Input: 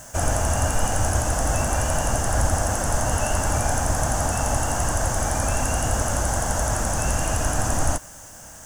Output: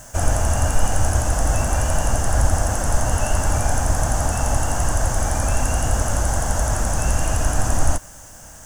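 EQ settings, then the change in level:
low-shelf EQ 68 Hz +8 dB
0.0 dB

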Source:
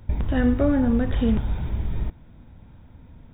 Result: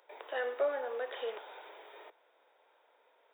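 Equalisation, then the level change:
Butterworth high-pass 430 Hz 48 dB per octave
−5.5 dB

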